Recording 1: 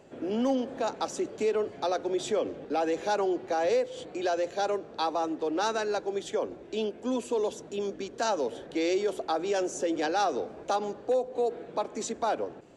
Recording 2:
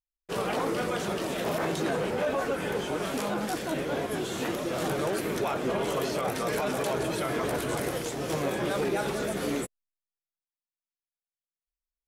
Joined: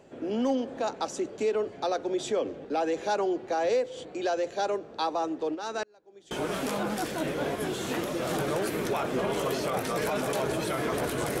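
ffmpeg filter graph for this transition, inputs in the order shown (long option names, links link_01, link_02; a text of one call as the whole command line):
ffmpeg -i cue0.wav -i cue1.wav -filter_complex "[0:a]asplit=3[link_01][link_02][link_03];[link_01]afade=type=out:start_time=5.54:duration=0.02[link_04];[link_02]aeval=exprs='val(0)*pow(10,-34*if(lt(mod(-1.2*n/s,1),2*abs(-1.2)/1000),1-mod(-1.2*n/s,1)/(2*abs(-1.2)/1000),(mod(-1.2*n/s,1)-2*abs(-1.2)/1000)/(1-2*abs(-1.2)/1000))/20)':channel_layout=same,afade=type=in:start_time=5.54:duration=0.02,afade=type=out:start_time=6.31:duration=0.02[link_05];[link_03]afade=type=in:start_time=6.31:duration=0.02[link_06];[link_04][link_05][link_06]amix=inputs=3:normalize=0,apad=whole_dur=11.4,atrim=end=11.4,atrim=end=6.312[link_07];[1:a]atrim=start=2.818:end=7.91[link_08];[link_07][link_08]acrossfade=duration=0.004:curve1=hsin:curve2=hsin" out.wav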